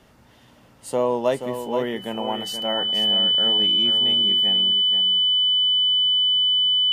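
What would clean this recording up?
notch filter 3,000 Hz, Q 30
echo removal 478 ms −8.5 dB

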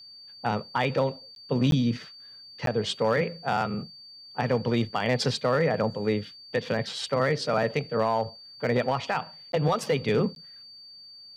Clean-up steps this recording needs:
clipped peaks rebuilt −16 dBFS
notch filter 4,600 Hz, Q 30
repair the gap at 0:01.35/0:01.71/0:02.66/0:09.52/0:10.35, 12 ms

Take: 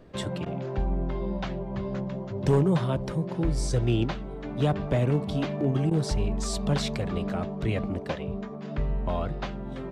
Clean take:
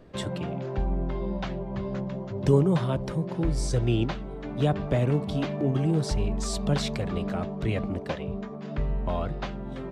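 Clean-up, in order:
clipped peaks rebuilt −15.5 dBFS
repair the gap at 0:00.45/0:05.90, 10 ms

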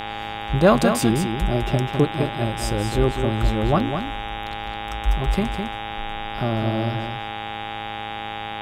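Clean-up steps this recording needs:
hum removal 107.8 Hz, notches 35
notch filter 810 Hz, Q 30
echo removal 206 ms −7 dB

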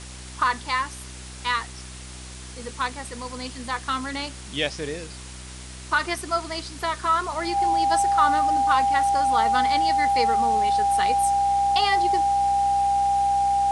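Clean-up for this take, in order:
hum removal 63.1 Hz, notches 6
notch filter 800 Hz, Q 30
noise reduction from a noise print 30 dB

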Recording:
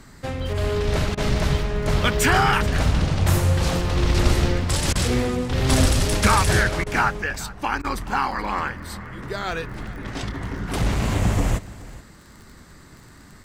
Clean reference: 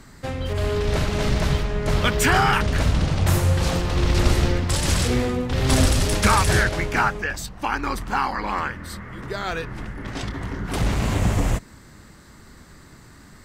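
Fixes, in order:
click removal
repair the gap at 0:01.15/0:04.93/0:06.84/0:07.82, 23 ms
echo removal 426 ms −19 dB

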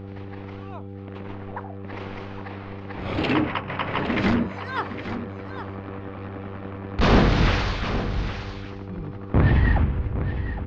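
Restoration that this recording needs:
hum removal 98.1 Hz, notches 5
notch filter 800 Hz, Q 30
echo removal 813 ms −10.5 dB

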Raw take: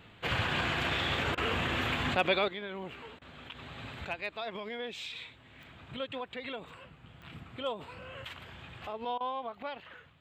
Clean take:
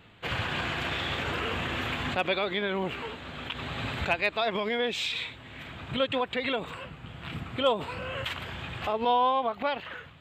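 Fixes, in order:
click removal
repair the gap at 0:01.35/0:03.19/0:09.18, 24 ms
level 0 dB, from 0:02.48 +10.5 dB

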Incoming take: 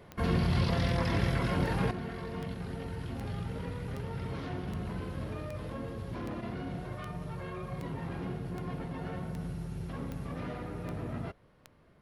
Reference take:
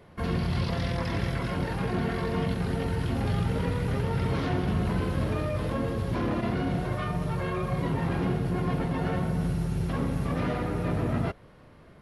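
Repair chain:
click removal
level 0 dB, from 0:01.91 +10 dB

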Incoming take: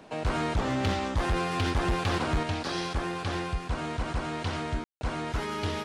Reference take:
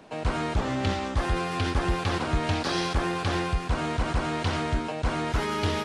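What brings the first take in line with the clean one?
clipped peaks rebuilt −21.5 dBFS
ambience match 0:04.84–0:05.01
level 0 dB, from 0:02.43 +4.5 dB

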